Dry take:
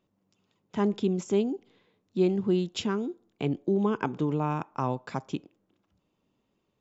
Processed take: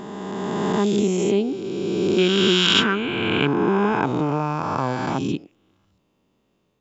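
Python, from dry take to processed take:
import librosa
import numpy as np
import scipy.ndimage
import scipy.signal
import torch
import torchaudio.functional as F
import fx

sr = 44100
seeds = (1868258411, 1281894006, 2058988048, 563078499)

y = fx.spec_swells(x, sr, rise_s=2.88)
y = fx.band_shelf(y, sr, hz=2200.0, db=10.5, octaves=1.7, at=(2.18, 3.47))
y = F.gain(torch.from_numpy(y), 3.5).numpy()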